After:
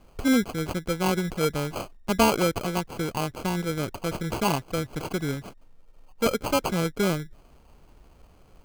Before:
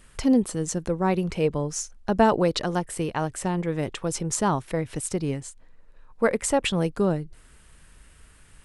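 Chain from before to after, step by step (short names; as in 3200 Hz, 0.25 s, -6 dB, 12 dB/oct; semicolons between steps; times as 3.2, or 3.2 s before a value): sample-and-hold 24×; gain -1.5 dB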